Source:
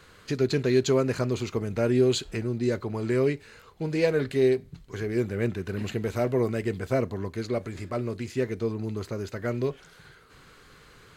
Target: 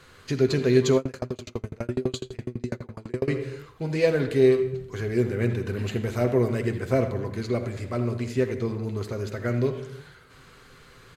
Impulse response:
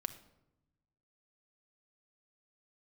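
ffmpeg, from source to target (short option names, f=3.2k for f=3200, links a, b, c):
-filter_complex "[0:a]asplit=2[a][b];[b]adelay=80,highpass=300,lowpass=3.4k,asoftclip=type=hard:threshold=-21.5dB,volume=-11dB[c];[a][c]amix=inputs=2:normalize=0[d];[1:a]atrim=start_sample=2205,afade=t=out:st=0.28:d=0.01,atrim=end_sample=12789,asetrate=28665,aresample=44100[e];[d][e]afir=irnorm=-1:irlink=0,asettb=1/sr,asplit=3[f][g][h];[f]atrim=end=0.974[i];[g]atrim=start=0.97:end=3.28,asetpts=PTS-STARTPTS,afade=t=in:d=0.004:c=qsin,afade=t=out:st=2.306:d=0.004:c=qsin,aeval=exprs='val(0)*pow(10,-34*if(lt(mod(12*n/s,1),2*abs(12)/1000),1-mod(12*n/s,1)/(2*abs(12)/1000),(mod(12*n/s,1)-2*abs(12)/1000)/(1-2*abs(12)/1000))/20)':c=same[j];[h]atrim=start=3.276[k];[i][j]acrossfade=d=0.004:c1=hsin:c2=qsin[l];[l][k]acrossfade=d=0.004:c1=qsin:c2=hsin"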